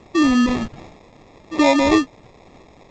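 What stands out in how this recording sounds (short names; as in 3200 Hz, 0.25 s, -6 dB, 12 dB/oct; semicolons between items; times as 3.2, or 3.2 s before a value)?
a quantiser's noise floor 8-bit, dither triangular; phasing stages 12, 1.3 Hz, lowest notch 570–2300 Hz; aliases and images of a low sample rate 1500 Hz, jitter 0%; G.722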